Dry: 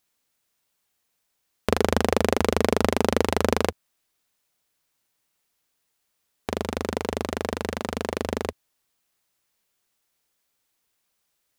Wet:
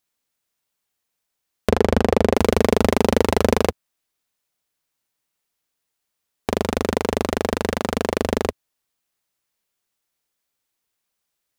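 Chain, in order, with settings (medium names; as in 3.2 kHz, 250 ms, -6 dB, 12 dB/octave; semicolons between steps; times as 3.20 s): 1.69–2.35 s: low-pass 2.2 kHz 6 dB/octave; waveshaping leveller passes 2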